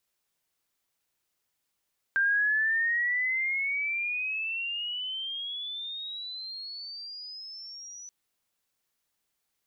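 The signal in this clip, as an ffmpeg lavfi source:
ffmpeg -f lavfi -i "aevalsrc='pow(10,(-21.5-20*t/5.93)/20)*sin(2*PI*1580*5.93/(23*log(2)/12)*(exp(23*log(2)/12*t/5.93)-1))':duration=5.93:sample_rate=44100" out.wav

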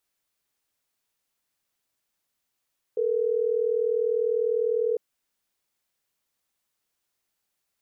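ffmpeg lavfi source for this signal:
ffmpeg -f lavfi -i "aevalsrc='0.0596*(sin(2*PI*440*t)+sin(2*PI*480*t))*clip(min(mod(t,6),2-mod(t,6))/0.005,0,1)':duration=3.12:sample_rate=44100" out.wav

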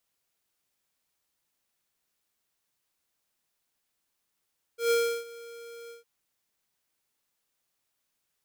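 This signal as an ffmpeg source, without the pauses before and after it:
ffmpeg -f lavfi -i "aevalsrc='0.0708*(2*lt(mod(467*t,1),0.5)-1)':duration=1.258:sample_rate=44100,afade=type=in:duration=0.127,afade=type=out:start_time=0.127:duration=0.332:silence=0.0841,afade=type=out:start_time=1.12:duration=0.138" out.wav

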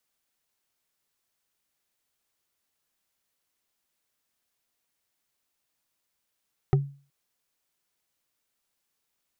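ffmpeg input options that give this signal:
ffmpeg -f lavfi -i "aevalsrc='0.188*pow(10,-3*t/0.38)*sin(2*PI*140*t)+0.106*pow(10,-3*t/0.113)*sin(2*PI*386*t)+0.0596*pow(10,-3*t/0.05)*sin(2*PI*756.6*t)+0.0335*pow(10,-3*t/0.027)*sin(2*PI*1250.6*t)+0.0188*pow(10,-3*t/0.017)*sin(2*PI*1867.6*t)':duration=0.37:sample_rate=44100" out.wav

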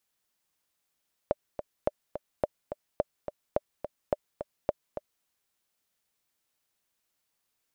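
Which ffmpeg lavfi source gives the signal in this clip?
ffmpeg -f lavfi -i "aevalsrc='pow(10,(-11.5-9.5*gte(mod(t,2*60/213),60/213))/20)*sin(2*PI*594*mod(t,60/213))*exp(-6.91*mod(t,60/213)/0.03)':duration=3.94:sample_rate=44100" out.wav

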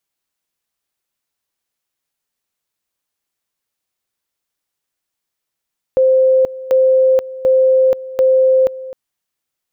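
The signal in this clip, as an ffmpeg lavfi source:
ffmpeg -f lavfi -i "aevalsrc='pow(10,(-8-17.5*gte(mod(t,0.74),0.48))/20)*sin(2*PI*522*t)':duration=2.96:sample_rate=44100" out.wav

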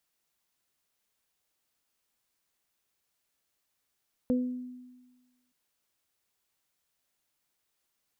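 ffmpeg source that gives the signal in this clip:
ffmpeg -f lavfi -i "aevalsrc='0.075*pow(10,-3*t/1.31)*sin(2*PI*250*t)+0.0422*pow(10,-3*t/0.43)*sin(2*PI*500*t)':duration=1.22:sample_rate=44100" out.wav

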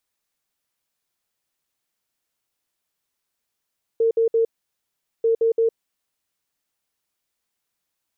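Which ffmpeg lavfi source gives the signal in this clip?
ffmpeg -f lavfi -i "aevalsrc='0.178*sin(2*PI*455*t)*clip(min(mod(mod(t,1.24),0.17),0.11-mod(mod(t,1.24),0.17))/0.005,0,1)*lt(mod(t,1.24),0.51)':duration=2.48:sample_rate=44100" out.wav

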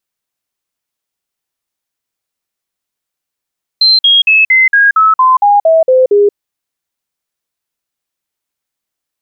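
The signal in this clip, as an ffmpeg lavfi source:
ffmpeg -f lavfi -i "aevalsrc='0.631*clip(min(mod(t,0.23),0.18-mod(t,0.23))/0.005,0,1)*sin(2*PI*4120*pow(2,-floor(t/0.23)/3)*mod(t,0.23))':duration=2.53:sample_rate=44100" out.wav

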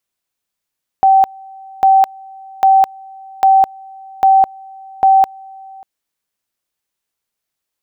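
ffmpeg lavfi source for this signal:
ffmpeg -f lavfi -i "aevalsrc='pow(10,(-5.5-26.5*gte(mod(t,0.8),0.21))/20)*sin(2*PI*772*t)':duration=4.8:sample_rate=44100" out.wav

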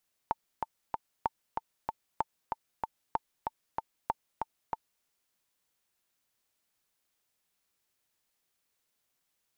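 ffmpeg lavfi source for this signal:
ffmpeg -f lavfi -i "aevalsrc='pow(10,(-14.5-4*gte(mod(t,3*60/190),60/190))/20)*sin(2*PI*895*mod(t,60/190))*exp(-6.91*mod(t,60/190)/0.03)':duration=4.73:sample_rate=44100" out.wav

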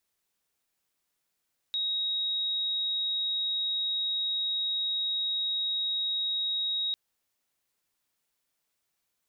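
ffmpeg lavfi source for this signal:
ffmpeg -f lavfi -i "aevalsrc='0.0447*sin(2*PI*3790*t)':duration=5.2:sample_rate=44100" out.wav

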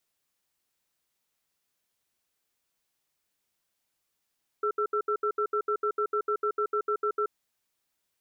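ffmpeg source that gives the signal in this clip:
ffmpeg -f lavfi -i "aevalsrc='0.0447*(sin(2*PI*420*t)+sin(2*PI*1340*t))*clip(min(mod(t,0.15),0.08-mod(t,0.15))/0.005,0,1)':duration=2.63:sample_rate=44100" out.wav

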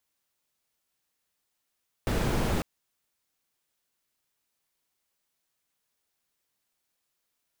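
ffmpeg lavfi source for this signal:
ffmpeg -f lavfi -i "anoisesrc=color=brown:amplitude=0.221:duration=0.55:sample_rate=44100:seed=1" out.wav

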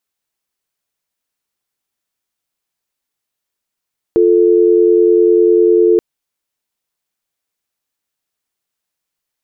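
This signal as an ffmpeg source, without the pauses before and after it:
ffmpeg -f lavfi -i "aevalsrc='0.335*(sin(2*PI*350*t)+sin(2*PI*440*t))':duration=1.83:sample_rate=44100" out.wav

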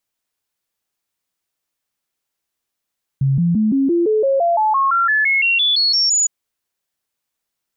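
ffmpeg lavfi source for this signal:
ffmpeg -f lavfi -i "aevalsrc='0.237*clip(min(mod(t,0.17),0.17-mod(t,0.17))/0.005,0,1)*sin(2*PI*136*pow(2,floor(t/0.17)/3)*mod(t,0.17))':duration=3.06:sample_rate=44100" out.wav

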